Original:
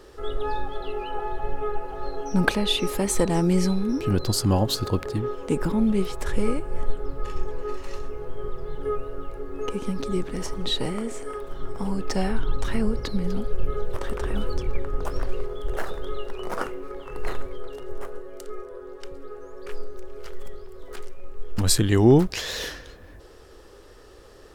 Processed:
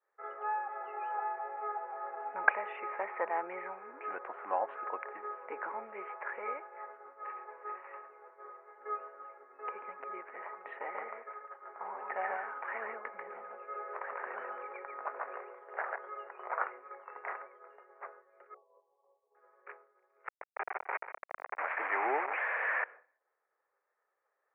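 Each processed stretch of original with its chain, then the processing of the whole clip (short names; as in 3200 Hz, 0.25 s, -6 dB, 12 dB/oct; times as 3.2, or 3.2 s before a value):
1.35–2.07 doubler 24 ms -12 dB + decimation joined by straight lines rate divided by 8×
10.79–15.96 expander -28 dBFS + echo 0.141 s -3.5 dB
18.54–19.35 brick-wall FIR band-pass 370–1200 Hz + doubler 23 ms -11 dB
20.27–22.84 delta modulation 64 kbps, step -19 dBFS + HPF 290 Hz + echo 0.15 s -13.5 dB
whole clip: HPF 660 Hz 24 dB/oct; expander -41 dBFS; steep low-pass 2300 Hz 72 dB/oct; gain -2 dB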